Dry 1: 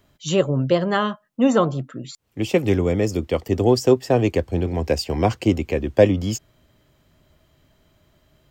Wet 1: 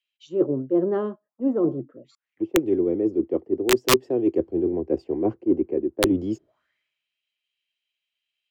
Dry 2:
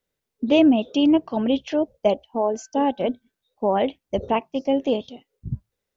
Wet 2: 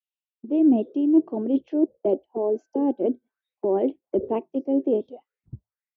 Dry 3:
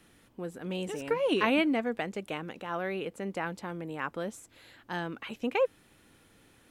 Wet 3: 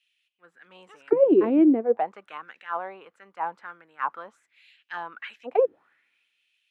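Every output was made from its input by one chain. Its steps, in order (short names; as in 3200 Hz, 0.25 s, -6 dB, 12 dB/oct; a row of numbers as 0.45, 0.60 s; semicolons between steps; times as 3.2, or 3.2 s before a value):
auto-wah 350–2800 Hz, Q 4.8, down, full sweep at -24 dBFS; wrapped overs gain 12 dB; reverse; compressor 5:1, threshold -30 dBFS; reverse; three-band expander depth 70%; match loudness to -24 LUFS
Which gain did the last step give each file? +11.0, +12.0, +13.0 dB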